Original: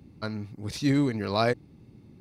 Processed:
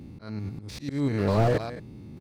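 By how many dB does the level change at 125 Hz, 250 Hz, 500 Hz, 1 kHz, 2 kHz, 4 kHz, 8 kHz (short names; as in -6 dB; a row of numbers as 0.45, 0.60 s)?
+4.0, -2.0, +2.0, 0.0, -3.5, -6.5, -4.0 dB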